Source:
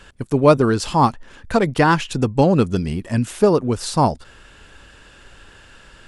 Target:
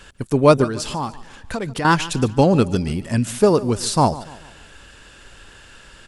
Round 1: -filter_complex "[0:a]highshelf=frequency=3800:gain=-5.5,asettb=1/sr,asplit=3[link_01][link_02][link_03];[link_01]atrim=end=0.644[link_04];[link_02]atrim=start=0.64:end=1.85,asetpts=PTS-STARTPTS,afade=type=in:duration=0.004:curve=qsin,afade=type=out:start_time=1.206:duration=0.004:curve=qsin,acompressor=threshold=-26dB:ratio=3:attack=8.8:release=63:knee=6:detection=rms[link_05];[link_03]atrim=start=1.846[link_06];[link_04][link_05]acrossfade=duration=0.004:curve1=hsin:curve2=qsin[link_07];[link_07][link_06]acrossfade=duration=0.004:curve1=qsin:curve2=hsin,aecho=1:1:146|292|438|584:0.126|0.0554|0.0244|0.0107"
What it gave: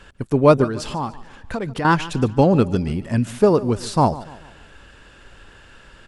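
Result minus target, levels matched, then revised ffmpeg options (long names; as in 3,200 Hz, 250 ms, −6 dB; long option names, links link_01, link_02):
8,000 Hz band −8.0 dB
-filter_complex "[0:a]highshelf=frequency=3800:gain=5.5,asettb=1/sr,asplit=3[link_01][link_02][link_03];[link_01]atrim=end=0.644[link_04];[link_02]atrim=start=0.64:end=1.85,asetpts=PTS-STARTPTS,afade=type=in:duration=0.004:curve=qsin,afade=type=out:start_time=1.206:duration=0.004:curve=qsin,acompressor=threshold=-26dB:ratio=3:attack=8.8:release=63:knee=6:detection=rms[link_05];[link_03]atrim=start=1.846[link_06];[link_04][link_05]acrossfade=duration=0.004:curve1=hsin:curve2=qsin[link_07];[link_07][link_06]acrossfade=duration=0.004:curve1=qsin:curve2=hsin,aecho=1:1:146|292|438|584:0.126|0.0554|0.0244|0.0107"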